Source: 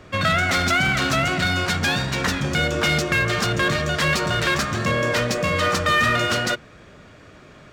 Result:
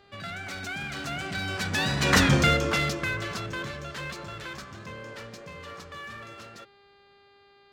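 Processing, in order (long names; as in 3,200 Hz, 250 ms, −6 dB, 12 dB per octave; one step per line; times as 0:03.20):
source passing by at 0:02.26, 18 m/s, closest 2.9 metres
hum with harmonics 400 Hz, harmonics 12, −63 dBFS −4 dB per octave
level +4.5 dB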